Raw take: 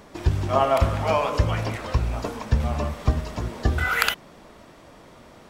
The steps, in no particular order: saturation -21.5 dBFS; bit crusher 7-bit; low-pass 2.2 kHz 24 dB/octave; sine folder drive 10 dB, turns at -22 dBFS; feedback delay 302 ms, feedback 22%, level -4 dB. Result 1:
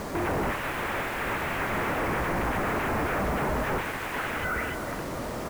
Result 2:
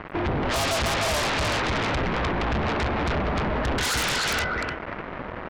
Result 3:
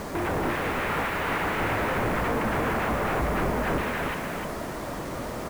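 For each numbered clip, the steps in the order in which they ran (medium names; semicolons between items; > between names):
feedback delay > sine folder > saturation > low-pass > bit crusher; feedback delay > bit crusher > low-pass > saturation > sine folder; sine folder > low-pass > saturation > feedback delay > bit crusher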